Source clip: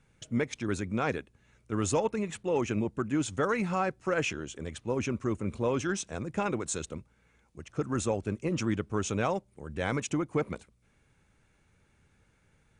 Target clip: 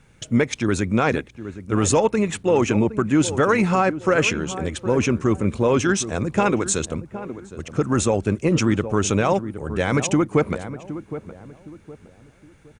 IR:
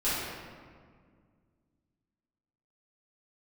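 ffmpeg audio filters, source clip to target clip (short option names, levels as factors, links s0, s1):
-filter_complex "[0:a]asplit=2[s0][s1];[s1]adelay=765,lowpass=f=1000:p=1,volume=0.237,asplit=2[s2][s3];[s3]adelay=765,lowpass=f=1000:p=1,volume=0.36,asplit=2[s4][s5];[s5]adelay=765,lowpass=f=1000:p=1,volume=0.36,asplit=2[s6][s7];[s7]adelay=765,lowpass=f=1000:p=1,volume=0.36[s8];[s2][s4][s6][s8]amix=inputs=4:normalize=0[s9];[s0][s9]amix=inputs=2:normalize=0,alimiter=level_in=8.41:limit=0.891:release=50:level=0:latency=1,volume=0.447"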